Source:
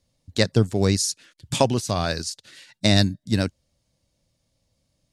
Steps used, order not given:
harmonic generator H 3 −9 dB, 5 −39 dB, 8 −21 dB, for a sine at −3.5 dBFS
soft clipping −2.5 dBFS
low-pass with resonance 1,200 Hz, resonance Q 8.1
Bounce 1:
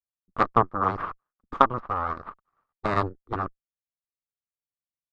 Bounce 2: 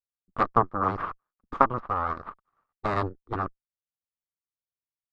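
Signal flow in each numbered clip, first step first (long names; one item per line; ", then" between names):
harmonic generator, then low-pass with resonance, then soft clipping
soft clipping, then harmonic generator, then low-pass with resonance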